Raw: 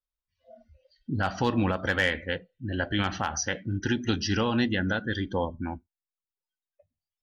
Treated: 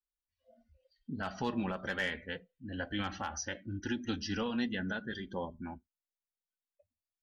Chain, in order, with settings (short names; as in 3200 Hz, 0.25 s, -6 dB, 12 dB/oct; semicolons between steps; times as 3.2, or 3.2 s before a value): flange 0.28 Hz, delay 3.2 ms, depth 2 ms, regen -27%; gain -5.5 dB